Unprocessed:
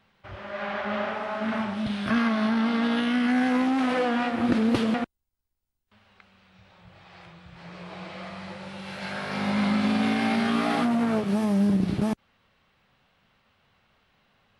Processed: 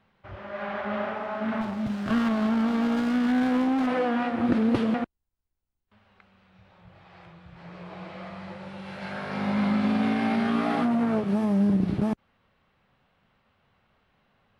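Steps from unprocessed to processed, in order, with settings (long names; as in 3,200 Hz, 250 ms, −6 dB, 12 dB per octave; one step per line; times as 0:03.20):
high-shelf EQ 2,800 Hz −10.5 dB
0:01.61–0:03.87: windowed peak hold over 9 samples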